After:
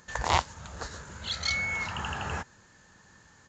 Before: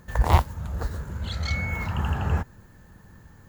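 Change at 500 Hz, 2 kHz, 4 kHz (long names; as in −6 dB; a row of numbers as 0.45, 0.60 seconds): −4.5, +2.0, +5.0 decibels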